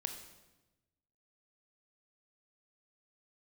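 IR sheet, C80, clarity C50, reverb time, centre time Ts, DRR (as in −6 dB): 10.0 dB, 7.5 dB, 1.1 s, 21 ms, 5.5 dB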